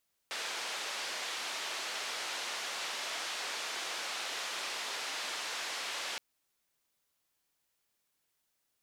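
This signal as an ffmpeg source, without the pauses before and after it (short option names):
-f lavfi -i "anoisesrc=c=white:d=5.87:r=44100:seed=1,highpass=f=510,lowpass=f=4700,volume=-26.8dB"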